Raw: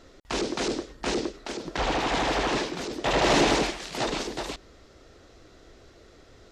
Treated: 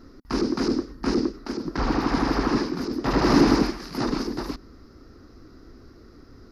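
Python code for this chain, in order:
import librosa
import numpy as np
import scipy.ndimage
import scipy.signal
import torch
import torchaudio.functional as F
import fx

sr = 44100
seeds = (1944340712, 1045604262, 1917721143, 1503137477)

y = fx.curve_eq(x, sr, hz=(180.0, 250.0, 630.0, 1200.0, 3400.0, 5000.0, 7900.0, 11000.0), db=(0, 6, -13, -2, -19, -2, -24, -2))
y = y * 10.0 ** (6.0 / 20.0)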